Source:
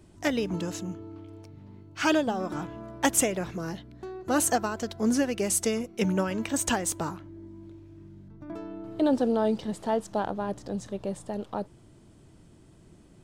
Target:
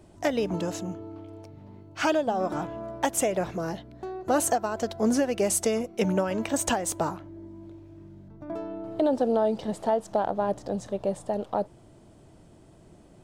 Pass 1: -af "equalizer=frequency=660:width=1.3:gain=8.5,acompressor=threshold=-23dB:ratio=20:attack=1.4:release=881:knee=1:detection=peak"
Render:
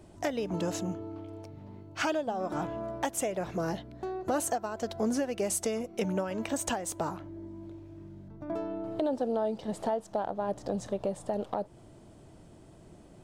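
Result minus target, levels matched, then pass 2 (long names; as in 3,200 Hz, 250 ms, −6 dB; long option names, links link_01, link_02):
downward compressor: peak gain reduction +6 dB
-af "equalizer=frequency=660:width=1.3:gain=8.5,acompressor=threshold=-16.5dB:ratio=20:attack=1.4:release=881:knee=1:detection=peak"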